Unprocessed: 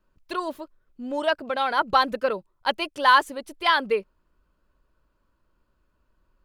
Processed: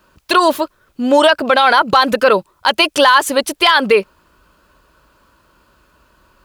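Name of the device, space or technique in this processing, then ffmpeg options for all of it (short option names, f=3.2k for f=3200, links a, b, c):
mastering chain: -af "highpass=51,equalizer=f=2k:t=o:w=0.42:g=-2.5,acompressor=threshold=-21dB:ratio=3,tiltshelf=f=650:g=-4.5,asoftclip=type=hard:threshold=-11.5dB,alimiter=level_in=21dB:limit=-1dB:release=50:level=0:latency=1,volume=-1dB"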